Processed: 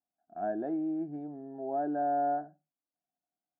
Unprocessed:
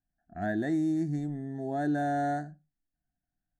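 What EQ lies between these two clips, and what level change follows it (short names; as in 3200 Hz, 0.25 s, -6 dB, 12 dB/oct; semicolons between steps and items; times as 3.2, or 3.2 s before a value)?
running mean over 23 samples; HPF 540 Hz 12 dB/oct; air absorption 410 m; +6.5 dB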